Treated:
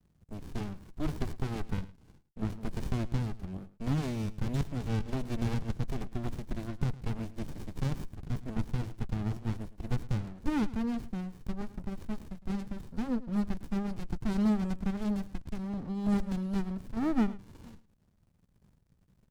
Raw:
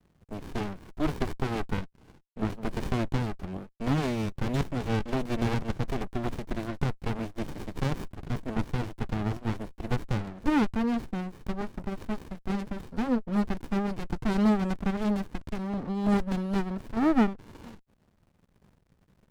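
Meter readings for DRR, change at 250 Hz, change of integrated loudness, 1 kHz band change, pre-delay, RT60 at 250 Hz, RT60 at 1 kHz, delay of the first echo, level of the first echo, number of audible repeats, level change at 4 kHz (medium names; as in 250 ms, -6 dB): no reverb, -4.0 dB, -4.0 dB, -9.0 dB, no reverb, no reverb, no reverb, 108 ms, -17.5 dB, 1, -6.5 dB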